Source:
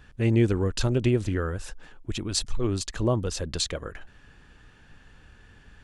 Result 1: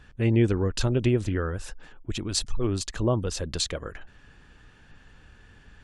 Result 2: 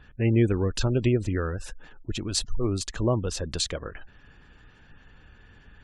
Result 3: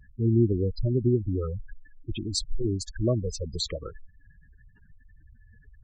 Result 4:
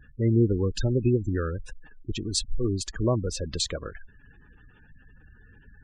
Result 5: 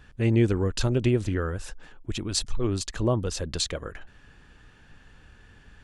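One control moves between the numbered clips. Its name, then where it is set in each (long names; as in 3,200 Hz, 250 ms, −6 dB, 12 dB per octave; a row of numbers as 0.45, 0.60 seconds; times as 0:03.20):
gate on every frequency bin, under each frame's peak: −50, −35, −10, −20, −60 decibels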